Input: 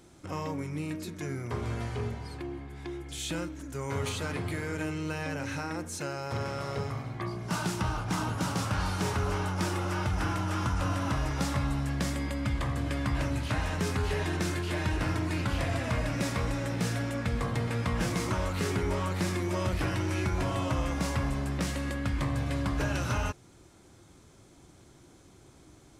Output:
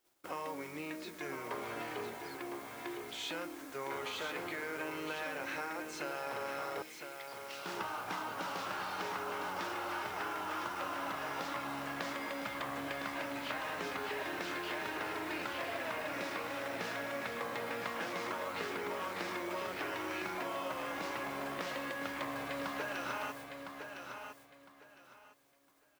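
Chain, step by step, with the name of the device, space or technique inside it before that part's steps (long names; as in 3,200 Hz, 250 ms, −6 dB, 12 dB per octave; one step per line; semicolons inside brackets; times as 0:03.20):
baby monitor (band-pass filter 470–3,700 Hz; downward compressor 8 to 1, threshold −37 dBFS, peak gain reduction 7.5 dB; white noise bed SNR 17 dB; noise gate −54 dBFS, range −24 dB)
0:06.82–0:07.66: Butterworth high-pass 2,100 Hz
repeating echo 1,008 ms, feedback 23%, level −7 dB
level +1 dB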